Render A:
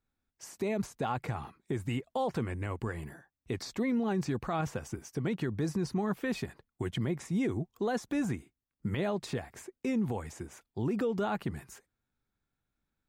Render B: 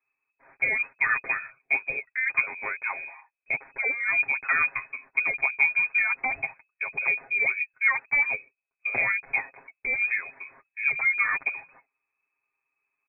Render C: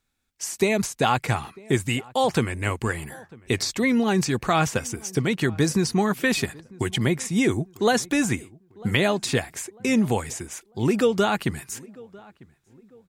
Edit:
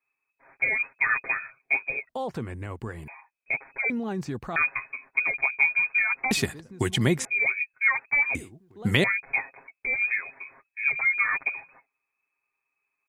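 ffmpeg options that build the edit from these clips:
-filter_complex "[0:a]asplit=2[a][b];[2:a]asplit=2[c][d];[1:a]asplit=5[e][f][g][h][i];[e]atrim=end=2.092[j];[a]atrim=start=2.088:end=3.082[k];[f]atrim=start=3.078:end=3.902[l];[b]atrim=start=3.898:end=4.562[m];[g]atrim=start=4.558:end=6.312[n];[c]atrim=start=6.308:end=7.252[o];[h]atrim=start=7.248:end=8.352[p];[d]atrim=start=8.348:end=9.042[q];[i]atrim=start=9.038[r];[j][k]acrossfade=d=0.004:c1=hsin:c2=hsin[s];[s][l]acrossfade=d=0.004:c1=hsin:c2=hsin[t];[t][m]acrossfade=d=0.004:c1=hsin:c2=hsin[u];[u][n]acrossfade=d=0.004:c1=hsin:c2=hsin[v];[v][o]acrossfade=d=0.004:c1=hsin:c2=hsin[w];[w][p]acrossfade=d=0.004:c1=hsin:c2=hsin[x];[x][q]acrossfade=d=0.004:c1=hsin:c2=hsin[y];[y][r]acrossfade=d=0.004:c1=hsin:c2=hsin"

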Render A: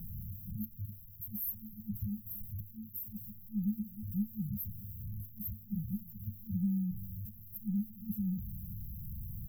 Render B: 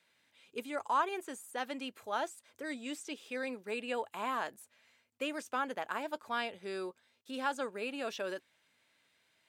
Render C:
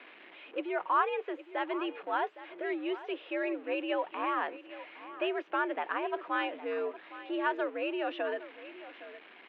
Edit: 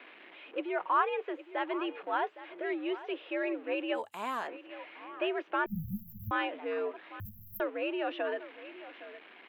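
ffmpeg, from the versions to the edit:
-filter_complex "[0:a]asplit=2[a][b];[2:a]asplit=4[c][d][e][f];[c]atrim=end=4.03[g];[1:a]atrim=start=3.93:end=4.5[h];[d]atrim=start=4.4:end=5.662[i];[a]atrim=start=5.658:end=6.312[j];[e]atrim=start=6.308:end=7.202[k];[b]atrim=start=7.198:end=7.602[l];[f]atrim=start=7.598[m];[g][h]acrossfade=d=0.1:c1=tri:c2=tri[n];[n][i]acrossfade=d=0.1:c1=tri:c2=tri[o];[o][j]acrossfade=d=0.004:c1=hsin:c2=hsin[p];[p][k]acrossfade=d=0.004:c1=hsin:c2=hsin[q];[q][l]acrossfade=d=0.004:c1=hsin:c2=hsin[r];[r][m]acrossfade=d=0.004:c1=hsin:c2=hsin"

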